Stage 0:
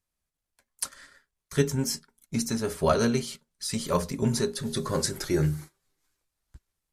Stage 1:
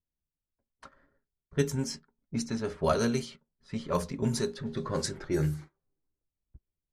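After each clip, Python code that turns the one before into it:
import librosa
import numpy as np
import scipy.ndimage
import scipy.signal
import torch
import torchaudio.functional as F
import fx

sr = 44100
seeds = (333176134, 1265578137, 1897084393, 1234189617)

y = fx.env_lowpass(x, sr, base_hz=400.0, full_db=-21.0)
y = F.gain(torch.from_numpy(y), -3.5).numpy()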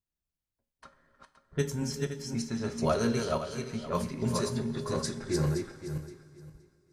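y = fx.reverse_delay_fb(x, sr, ms=260, feedback_pct=42, wet_db=-3)
y = fx.rev_double_slope(y, sr, seeds[0], early_s=0.29, late_s=2.9, knee_db=-18, drr_db=7.5)
y = F.gain(torch.from_numpy(y), -2.5).numpy()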